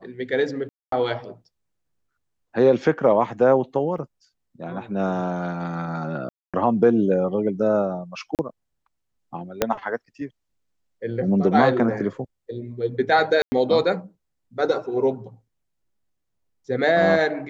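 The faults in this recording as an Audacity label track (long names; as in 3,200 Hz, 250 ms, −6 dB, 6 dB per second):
0.690000	0.920000	drop-out 233 ms
3.980000	3.980000	drop-out 3.4 ms
6.290000	6.540000	drop-out 246 ms
8.350000	8.390000	drop-out 38 ms
9.620000	9.620000	click −4 dBFS
13.420000	13.520000	drop-out 100 ms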